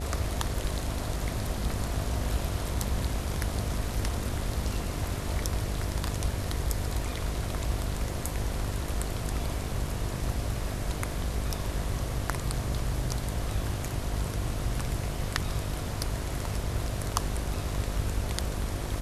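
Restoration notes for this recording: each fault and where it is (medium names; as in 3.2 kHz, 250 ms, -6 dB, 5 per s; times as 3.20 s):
buzz 50 Hz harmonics 14 -36 dBFS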